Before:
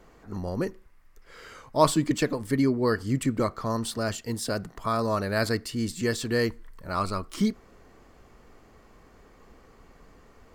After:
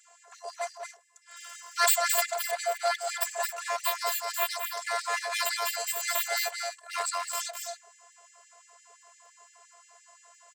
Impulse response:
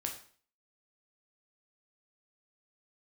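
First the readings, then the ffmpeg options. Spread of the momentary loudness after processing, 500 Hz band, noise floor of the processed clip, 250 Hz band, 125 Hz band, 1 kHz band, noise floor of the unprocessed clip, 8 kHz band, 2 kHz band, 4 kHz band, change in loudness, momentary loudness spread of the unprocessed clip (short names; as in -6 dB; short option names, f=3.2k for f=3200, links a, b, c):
17 LU, -6.5 dB, -60 dBFS, under -40 dB, under -40 dB, 0.0 dB, -56 dBFS, +7.0 dB, +3.0 dB, +3.5 dB, -1.5 dB, 10 LU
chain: -filter_complex "[0:a]lowshelf=f=140:g=9,bandreject=f=104.5:t=h:w=4,bandreject=f=209:t=h:w=4,bandreject=f=313.5:t=h:w=4,bandreject=f=418:t=h:w=4,bandreject=f=522.5:t=h:w=4,bandreject=f=627:t=h:w=4,bandreject=f=731.5:t=h:w=4,bandreject=f=836:t=h:w=4,bandreject=f=940.5:t=h:w=4,acrossover=split=420|430|3000[a][b][c][d];[a]acompressor=mode=upward:threshold=-38dB:ratio=2.5[e];[e][b][c][d]amix=inputs=4:normalize=0,lowpass=f=7.7k:t=q:w=8.3,afftfilt=real='hypot(re,im)*cos(PI*b)':imag='0':win_size=512:overlap=0.75,aeval=exprs='abs(val(0))':c=same,aecho=1:1:218.7|265.3:0.562|0.282,afftfilt=real='re*gte(b*sr/1024,420*pow(1800/420,0.5+0.5*sin(2*PI*5.8*pts/sr)))':imag='im*gte(b*sr/1024,420*pow(1800/420,0.5+0.5*sin(2*PI*5.8*pts/sr)))':win_size=1024:overlap=0.75,volume=4dB"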